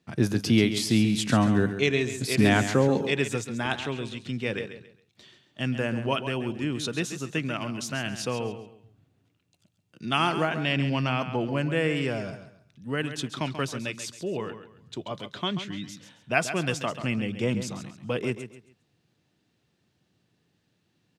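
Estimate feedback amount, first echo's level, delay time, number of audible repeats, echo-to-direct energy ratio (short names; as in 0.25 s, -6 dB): 29%, -10.5 dB, 0.136 s, 3, -10.0 dB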